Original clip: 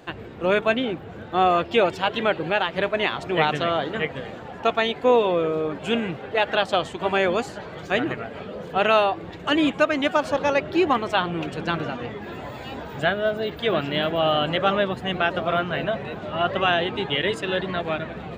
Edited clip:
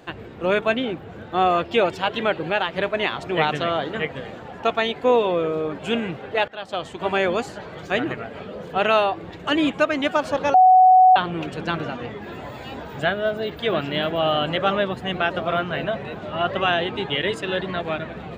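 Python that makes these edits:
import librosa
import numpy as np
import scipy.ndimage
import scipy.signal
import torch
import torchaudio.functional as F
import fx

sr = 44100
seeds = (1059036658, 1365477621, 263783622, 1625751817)

y = fx.edit(x, sr, fx.fade_in_from(start_s=6.48, length_s=0.59, floor_db=-22.0),
    fx.bleep(start_s=10.54, length_s=0.62, hz=744.0, db=-8.5), tone=tone)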